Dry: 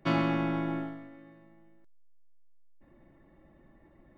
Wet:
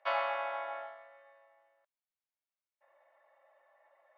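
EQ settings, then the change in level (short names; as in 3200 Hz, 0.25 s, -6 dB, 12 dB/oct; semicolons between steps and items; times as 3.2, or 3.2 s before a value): Chebyshev high-pass 570 Hz, order 5; air absorption 260 m; +2.5 dB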